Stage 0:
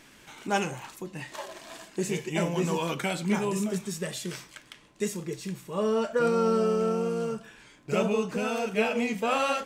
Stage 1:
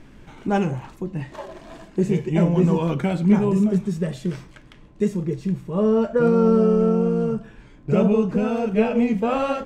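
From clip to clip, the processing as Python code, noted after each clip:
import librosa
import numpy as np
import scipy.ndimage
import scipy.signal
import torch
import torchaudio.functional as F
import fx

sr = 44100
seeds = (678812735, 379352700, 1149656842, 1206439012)

y = fx.tilt_eq(x, sr, slope=-4.0)
y = y * 10.0 ** (2.0 / 20.0)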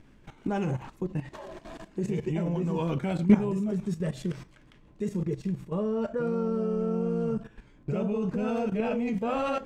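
y = fx.level_steps(x, sr, step_db=14)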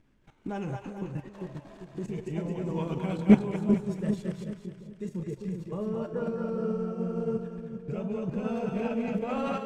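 y = fx.echo_split(x, sr, split_hz=470.0, low_ms=396, high_ms=217, feedback_pct=52, wet_db=-3)
y = fx.upward_expand(y, sr, threshold_db=-38.0, expansion=1.5)
y = y * 10.0 ** (2.0 / 20.0)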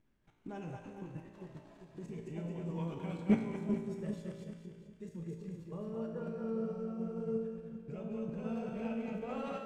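y = fx.comb_fb(x, sr, f0_hz=56.0, decay_s=1.2, harmonics='all', damping=0.0, mix_pct=80)
y = y * 10.0 ** (1.0 / 20.0)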